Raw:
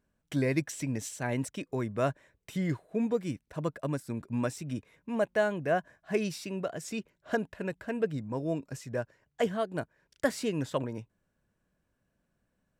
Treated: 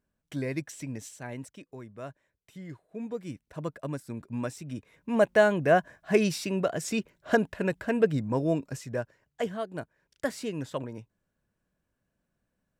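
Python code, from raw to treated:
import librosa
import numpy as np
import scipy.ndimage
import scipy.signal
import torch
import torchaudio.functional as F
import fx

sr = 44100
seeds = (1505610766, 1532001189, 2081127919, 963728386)

y = fx.gain(x, sr, db=fx.line((0.94, -4.0), (1.86, -12.0), (2.66, -12.0), (3.46, -2.0), (4.74, -2.0), (5.22, 6.5), (8.35, 6.5), (9.45, -2.5)))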